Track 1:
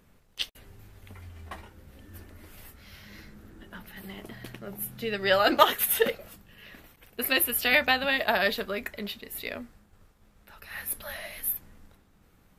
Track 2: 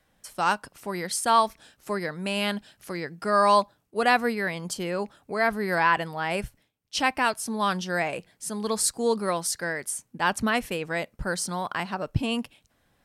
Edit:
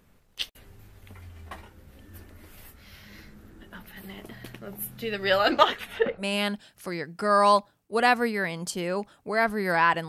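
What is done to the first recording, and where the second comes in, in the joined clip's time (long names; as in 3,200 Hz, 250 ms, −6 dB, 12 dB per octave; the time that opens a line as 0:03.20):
track 1
0:05.38–0:06.25: low-pass filter 12,000 Hz → 1,100 Hz
0:06.21: continue with track 2 from 0:02.24, crossfade 0.08 s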